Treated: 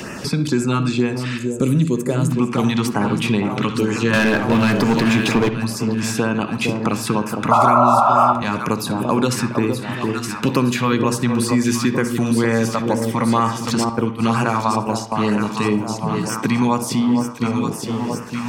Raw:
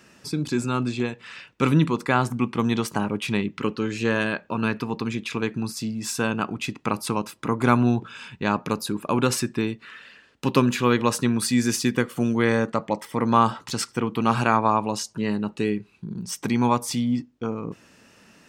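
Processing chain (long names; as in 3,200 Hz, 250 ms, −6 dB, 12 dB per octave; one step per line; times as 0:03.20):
delay that swaps between a low-pass and a high-pass 459 ms, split 980 Hz, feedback 69%, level −8 dB
in parallel at −0.5 dB: brickwall limiter −14 dBFS, peak gain reduction 11 dB
on the sum: auto-filter notch sine 2.1 Hz 340–4,100 Hz
0:01.37–0:02.30: gain on a spectral selection 660–6,200 Hz −12 dB
0:04.13–0:05.49: leveller curve on the samples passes 3
0:07.51–0:08.33: sound drawn into the spectrogram noise 560–1,400 Hz −8 dBFS
0:13.89–0:15.12: noise gate −19 dBFS, range −16 dB
on a send at −11 dB: convolution reverb, pre-delay 48 ms
on the sum: multiband upward and downward compressor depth 70%
level −1 dB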